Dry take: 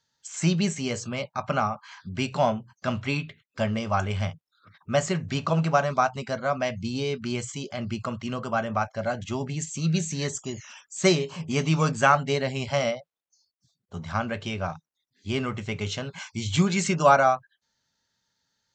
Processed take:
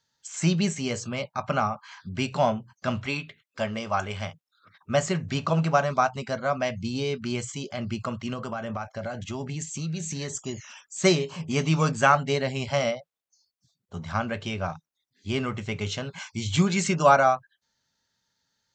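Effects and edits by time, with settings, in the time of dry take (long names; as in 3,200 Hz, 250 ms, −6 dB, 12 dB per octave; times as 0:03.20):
0:03.06–0:04.90: low-shelf EQ 220 Hz −9.5 dB
0:08.33–0:10.32: downward compressor, threshold −28 dBFS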